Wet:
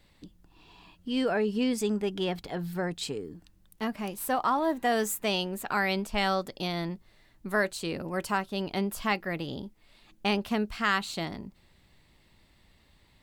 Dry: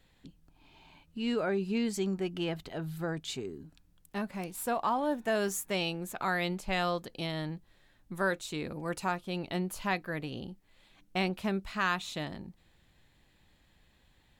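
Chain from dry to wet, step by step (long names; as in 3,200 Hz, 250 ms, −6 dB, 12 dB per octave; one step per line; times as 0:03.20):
wrong playback speed 44.1 kHz file played as 48 kHz
level +3.5 dB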